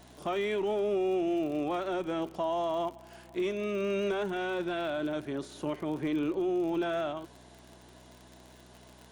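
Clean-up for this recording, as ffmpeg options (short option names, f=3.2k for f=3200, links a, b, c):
-af "adeclick=t=4,bandreject=f=62:t=h:w=4,bandreject=f=124:t=h:w=4,bandreject=f=186:t=h:w=4,bandreject=f=248:t=h:w=4"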